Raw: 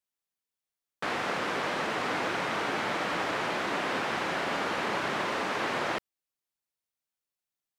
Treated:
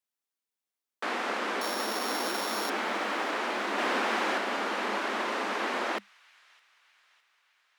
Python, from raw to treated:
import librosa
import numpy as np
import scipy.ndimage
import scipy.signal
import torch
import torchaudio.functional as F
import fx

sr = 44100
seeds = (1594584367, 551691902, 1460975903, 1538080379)

y = fx.sample_sort(x, sr, block=8, at=(1.61, 2.7))
y = fx.leveller(y, sr, passes=1, at=(3.78, 4.38))
y = scipy.signal.sosfilt(scipy.signal.cheby1(8, 1.0, 200.0, 'highpass', fs=sr, output='sos'), y)
y = fx.echo_wet_highpass(y, sr, ms=610, feedback_pct=56, hz=2000.0, wet_db=-23.5)